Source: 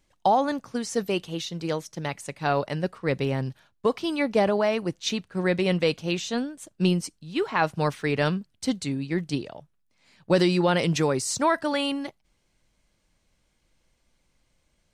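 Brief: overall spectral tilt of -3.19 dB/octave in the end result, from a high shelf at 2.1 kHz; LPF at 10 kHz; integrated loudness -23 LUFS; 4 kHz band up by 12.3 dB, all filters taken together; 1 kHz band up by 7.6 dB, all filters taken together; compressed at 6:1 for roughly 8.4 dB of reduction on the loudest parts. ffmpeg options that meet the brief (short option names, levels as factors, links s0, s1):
-af "lowpass=10000,equalizer=f=1000:t=o:g=8,highshelf=f=2100:g=7,equalizer=f=4000:t=o:g=8.5,acompressor=threshold=0.112:ratio=6,volume=1.26"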